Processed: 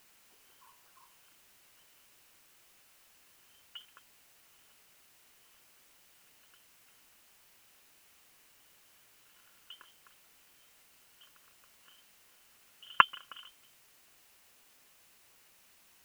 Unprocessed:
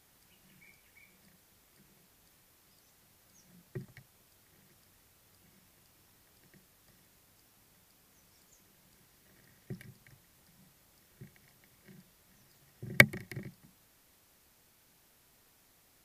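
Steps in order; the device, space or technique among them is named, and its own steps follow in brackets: scrambled radio voice (band-pass 320–2600 Hz; frequency inversion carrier 3.3 kHz; white noise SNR 20 dB)

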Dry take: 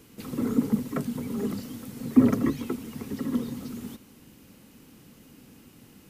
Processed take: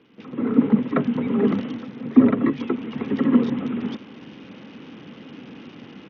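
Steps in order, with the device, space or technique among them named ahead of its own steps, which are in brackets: Bluetooth headset (high-pass 180 Hz 12 dB/octave; level rider gain up to 14.5 dB; resampled via 8 kHz; trim -1 dB; SBC 64 kbps 48 kHz)

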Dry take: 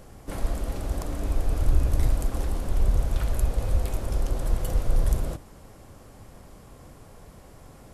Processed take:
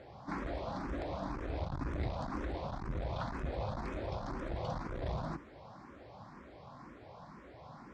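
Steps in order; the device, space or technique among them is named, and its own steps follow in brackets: tone controls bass -4 dB, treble -3 dB; barber-pole phaser into a guitar amplifier (barber-pole phaser +2 Hz; saturation -25.5 dBFS, distortion -12 dB; cabinet simulation 88–4500 Hz, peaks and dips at 96 Hz -5 dB, 450 Hz -6 dB, 980 Hz +4 dB, 2.9 kHz -8 dB); trim +3 dB

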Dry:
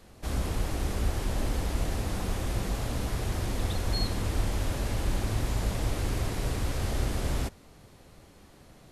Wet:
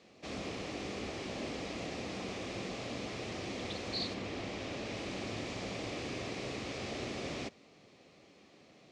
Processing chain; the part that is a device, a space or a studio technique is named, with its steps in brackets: 4.13–4.93 s: treble shelf 6.3 kHz -> 12 kHz -10 dB; full-range speaker at full volume (loudspeaker Doppler distortion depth 0.38 ms; cabinet simulation 220–6300 Hz, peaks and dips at 920 Hz -7 dB, 1.5 kHz -8 dB, 2.4 kHz +5 dB); trim -2.5 dB

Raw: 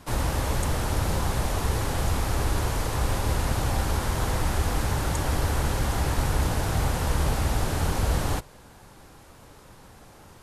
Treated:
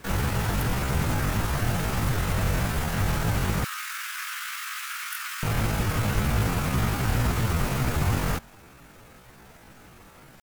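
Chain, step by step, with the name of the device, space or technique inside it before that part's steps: 3.66–5.46 s: steep high-pass 750 Hz 48 dB/octave; chipmunk voice (pitch shift +8 st)

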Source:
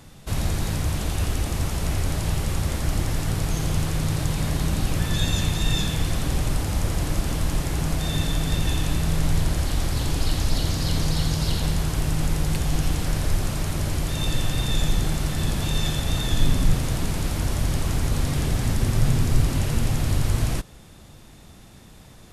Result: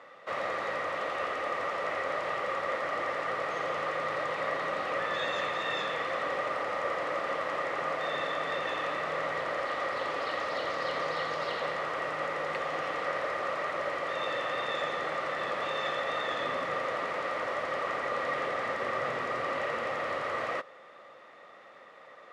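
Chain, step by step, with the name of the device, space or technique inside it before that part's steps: tin-can telephone (band-pass 700–2100 Hz; small resonant body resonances 540/1200/1900 Hz, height 14 dB, ringing for 25 ms)

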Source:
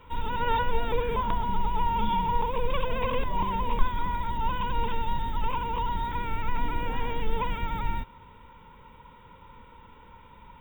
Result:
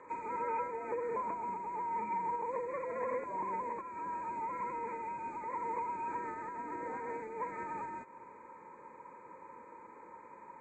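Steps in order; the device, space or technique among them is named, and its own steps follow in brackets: hearing aid with frequency lowering (knee-point frequency compression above 1.1 kHz 1.5:1; compression 3:1, threshold -33 dBFS, peak gain reduction 15 dB; cabinet simulation 320–5200 Hz, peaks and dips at 340 Hz +9 dB, 560 Hz +4 dB, 1.8 kHz -3 dB, 5.1 kHz -8 dB)

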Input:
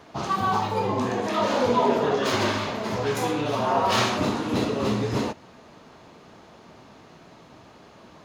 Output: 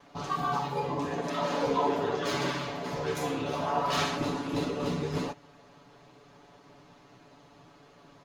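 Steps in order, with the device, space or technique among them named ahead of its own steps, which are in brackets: ring-modulated robot voice (ring modulator 34 Hz; comb 7 ms, depth 90%); trim -6 dB

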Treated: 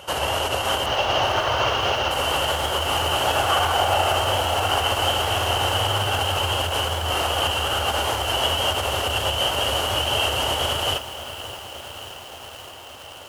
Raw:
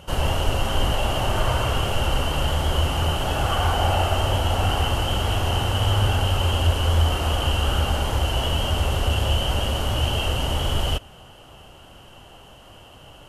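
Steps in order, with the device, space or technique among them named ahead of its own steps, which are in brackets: car stereo with a boomy subwoofer (resonant low shelf 130 Hz +12.5 dB, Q 1.5; peak limiter -5 dBFS, peak gain reduction 9.5 dB); 0.86–2.11 s: steep low-pass 6.5 kHz 96 dB/octave; high-pass 390 Hz 12 dB/octave; bit-crushed delay 573 ms, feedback 80%, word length 7-bit, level -13 dB; trim +6.5 dB

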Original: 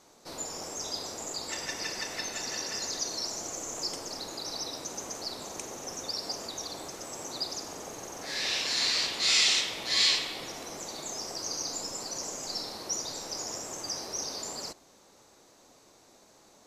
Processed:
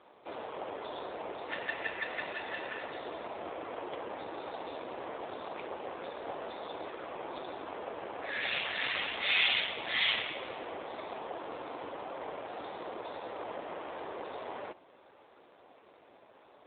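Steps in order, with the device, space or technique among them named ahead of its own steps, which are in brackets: telephone (band-pass 350–3400 Hz; trim +5.5 dB; AMR-NB 7.4 kbps 8 kHz)

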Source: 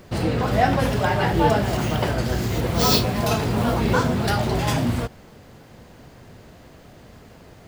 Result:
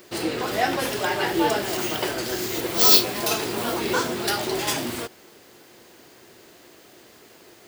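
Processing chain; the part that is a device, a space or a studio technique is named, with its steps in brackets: tilt EQ +4.5 dB/octave; inside a helmet (treble shelf 5 kHz -5.5 dB; small resonant body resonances 350 Hz, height 13 dB, ringing for 30 ms); trim -3.5 dB

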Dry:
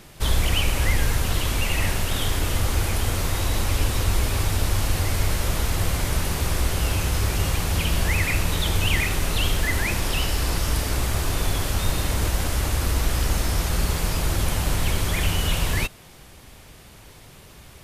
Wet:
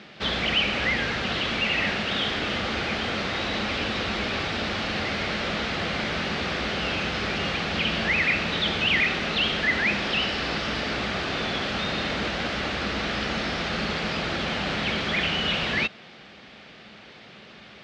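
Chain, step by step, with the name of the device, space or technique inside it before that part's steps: overdrive pedal into a guitar cabinet (overdrive pedal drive 13 dB, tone 4.9 kHz, clips at -7.5 dBFS; cabinet simulation 95–4400 Hz, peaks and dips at 96 Hz -7 dB, 210 Hz +10 dB, 980 Hz -8 dB); trim -2 dB

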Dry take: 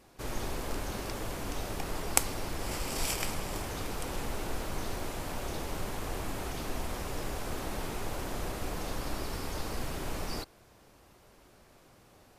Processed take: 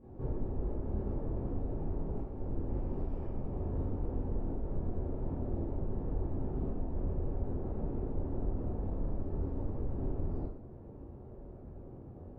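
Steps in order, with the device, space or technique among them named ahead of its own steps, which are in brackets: television next door (compression 5:1, threshold -44 dBFS, peak gain reduction 23 dB; low-pass 350 Hz 12 dB/octave; reverberation RT60 0.75 s, pre-delay 16 ms, DRR -8.5 dB); trim +5.5 dB

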